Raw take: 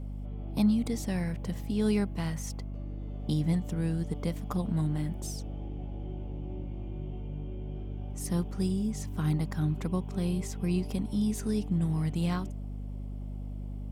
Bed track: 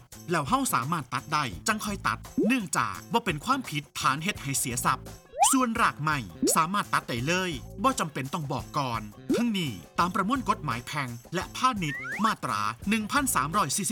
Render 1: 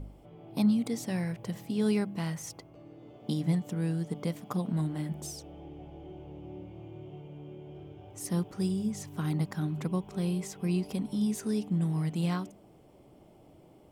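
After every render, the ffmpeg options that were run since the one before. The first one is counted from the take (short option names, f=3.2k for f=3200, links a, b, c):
-af "bandreject=f=50:t=h:w=4,bandreject=f=100:t=h:w=4,bandreject=f=150:t=h:w=4,bandreject=f=200:t=h:w=4,bandreject=f=250:t=h:w=4"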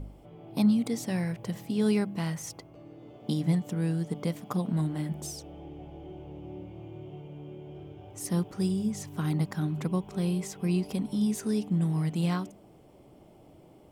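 -af "volume=2dB"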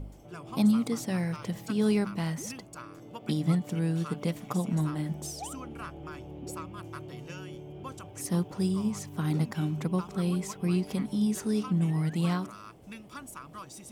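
-filter_complex "[1:a]volume=-19dB[a];[0:a][a]amix=inputs=2:normalize=0"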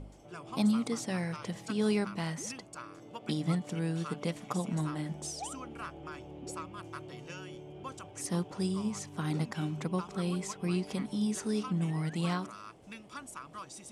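-af "lowpass=f=10k:w=0.5412,lowpass=f=10k:w=1.3066,lowshelf=f=270:g=-7"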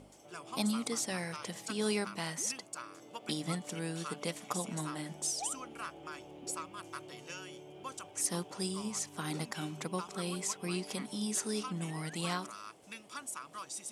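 -af "highpass=f=350:p=1,aemphasis=mode=production:type=cd"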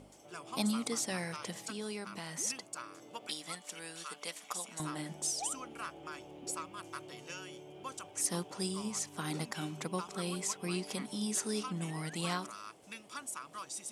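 -filter_complex "[0:a]asettb=1/sr,asplit=3[a][b][c];[a]atrim=end=1.694[d];[b]atrim=start=1.69:end=2.39,asetpts=PTS-STARTPTS,afade=t=in:d=0.004:c=qsin,afade=t=out:st=0.696:d=0.004:c=qsin,acompressor=threshold=-39dB:ratio=3:attack=3.2:release=140:knee=1:detection=peak[e];[c]atrim=start=2.386[f];[d][e]acrossfade=d=0.004:c1=hsin:c2=qsin[g];[g][f]acrossfade=d=0.004:c1=qsin:c2=hsin,asettb=1/sr,asplit=3[h][i][j];[h]atrim=end=3.274[k];[i]atrim=start=3.27:end=4.8,asetpts=PTS-STARTPTS,afade=t=in:d=0.004:c=qsin,afade=t=out:st=1.526:d=0.004:c=qsin,highpass=f=1.3k:p=1[l];[j]atrim=start=4.796[m];[k][l]acrossfade=d=0.004:c1=hsin:c2=qsin[n];[n][m]acrossfade=d=0.004:c1=qsin:c2=hsin"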